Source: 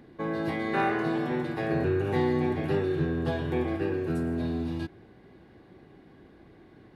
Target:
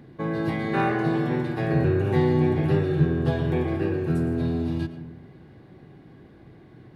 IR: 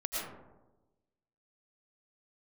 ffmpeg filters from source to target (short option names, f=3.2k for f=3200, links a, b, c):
-filter_complex "[0:a]equalizer=f=130:w=1.5:g=9.5,asplit=2[a][b];[1:a]atrim=start_sample=2205[c];[b][c]afir=irnorm=-1:irlink=0,volume=-13dB[d];[a][d]amix=inputs=2:normalize=0"